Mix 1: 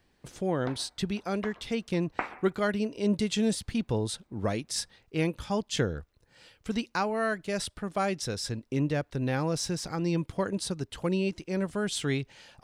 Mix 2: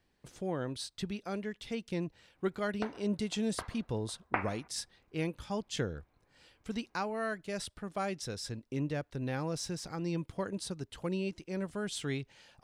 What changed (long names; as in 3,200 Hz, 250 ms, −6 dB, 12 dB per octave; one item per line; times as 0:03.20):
speech −6.5 dB
background: entry +2.15 s